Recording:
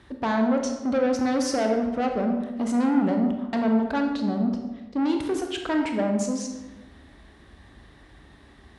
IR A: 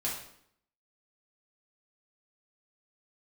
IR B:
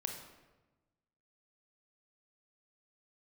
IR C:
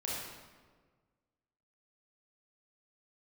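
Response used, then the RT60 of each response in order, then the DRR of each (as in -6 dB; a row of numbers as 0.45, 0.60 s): B; 0.65, 1.1, 1.5 s; -6.0, 3.0, -6.0 dB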